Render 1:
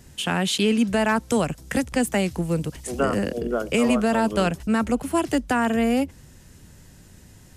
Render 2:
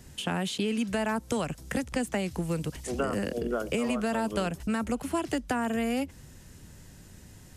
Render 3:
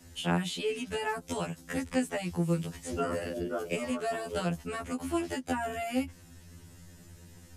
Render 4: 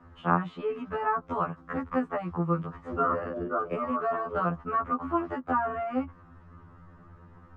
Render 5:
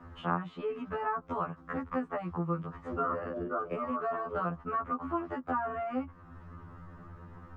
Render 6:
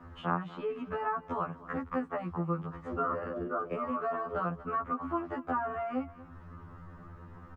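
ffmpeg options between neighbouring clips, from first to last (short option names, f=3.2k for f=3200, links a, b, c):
-filter_complex "[0:a]acrossover=split=1000|7200[a][b][c];[a]acompressor=threshold=-26dB:ratio=4[d];[b]acompressor=threshold=-34dB:ratio=4[e];[c]acompressor=threshold=-46dB:ratio=4[f];[d][e][f]amix=inputs=3:normalize=0,volume=-1.5dB"
-af "afftfilt=real='re*2*eq(mod(b,4),0)':imag='im*2*eq(mod(b,4),0)':win_size=2048:overlap=0.75"
-af "lowpass=f=1.2k:t=q:w=7.5"
-af "acompressor=threshold=-48dB:ratio=1.5,volume=3.5dB"
-af "aecho=1:1:238:0.119"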